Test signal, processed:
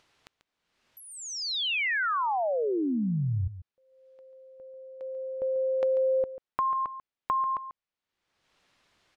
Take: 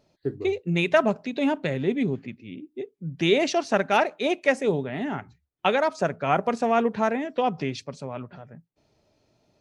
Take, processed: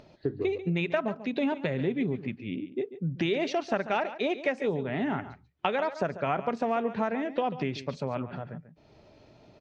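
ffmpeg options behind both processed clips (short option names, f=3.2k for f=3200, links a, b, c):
-filter_complex "[0:a]acompressor=threshold=-32dB:ratio=4,lowpass=3.8k,acompressor=mode=upward:threshold=-53dB:ratio=2.5,asplit=2[a][b];[b]aecho=0:1:141:0.211[c];[a][c]amix=inputs=2:normalize=0,volume=5dB"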